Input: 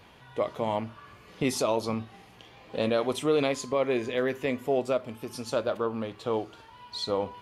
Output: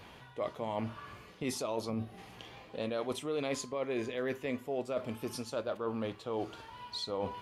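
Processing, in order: time-frequency box 1.90–2.18 s, 770–8900 Hz -8 dB; reverse; compression 6:1, threshold -34 dBFS, peak gain reduction 13.5 dB; reverse; trim +1.5 dB

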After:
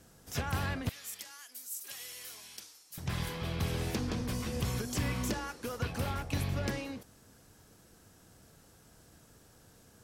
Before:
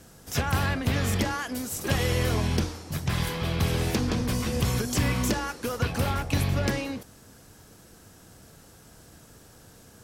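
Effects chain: 0.89–2.98 s: differentiator; trim -8 dB

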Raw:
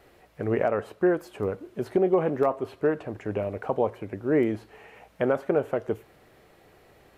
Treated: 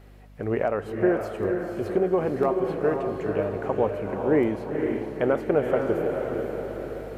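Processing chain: echo that smears into a reverb 490 ms, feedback 48%, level -4 dB; hum 50 Hz, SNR 23 dB; gain riding within 5 dB 2 s

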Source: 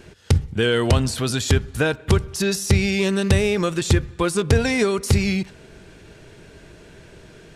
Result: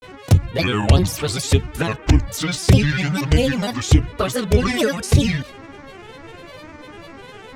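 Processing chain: touch-sensitive flanger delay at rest 10.5 ms, full sweep at -12 dBFS; mains buzz 400 Hz, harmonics 8, -45 dBFS -4 dB/octave; granulator, spray 20 ms, pitch spread up and down by 7 st; trim +5.5 dB

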